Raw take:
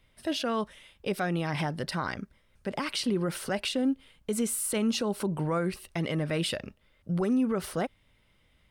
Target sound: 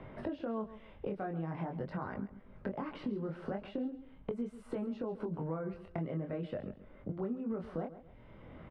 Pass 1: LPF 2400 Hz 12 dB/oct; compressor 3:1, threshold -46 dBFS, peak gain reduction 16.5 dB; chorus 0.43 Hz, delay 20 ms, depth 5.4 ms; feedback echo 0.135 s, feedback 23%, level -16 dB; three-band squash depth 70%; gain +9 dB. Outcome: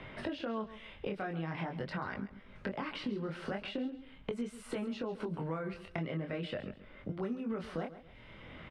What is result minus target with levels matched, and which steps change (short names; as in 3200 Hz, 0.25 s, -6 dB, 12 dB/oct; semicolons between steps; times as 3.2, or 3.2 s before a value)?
2000 Hz band +7.5 dB
change: LPF 1000 Hz 12 dB/oct